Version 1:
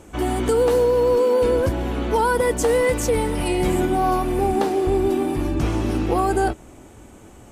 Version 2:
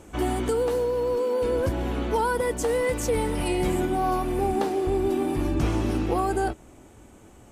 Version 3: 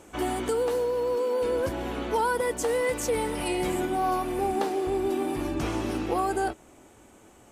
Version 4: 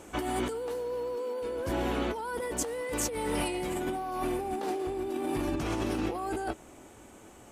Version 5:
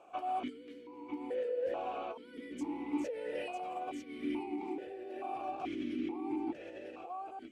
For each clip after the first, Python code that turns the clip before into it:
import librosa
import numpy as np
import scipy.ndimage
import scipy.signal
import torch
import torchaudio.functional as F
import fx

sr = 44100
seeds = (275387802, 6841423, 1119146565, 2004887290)

y1 = fx.rider(x, sr, range_db=3, speed_s=0.5)
y1 = y1 * 10.0 ** (-5.0 / 20.0)
y2 = fx.low_shelf(y1, sr, hz=200.0, db=-11.0)
y3 = fx.over_compress(y2, sr, threshold_db=-31.0, ratio=-1.0)
y3 = y3 * 10.0 ** (-1.5 / 20.0)
y4 = y3 + 10.0 ** (-4.5 / 20.0) * np.pad(y3, (int(949 * sr / 1000.0), 0))[:len(y3)]
y4 = fx.vowel_held(y4, sr, hz=2.3)
y4 = y4 * 10.0 ** (2.5 / 20.0)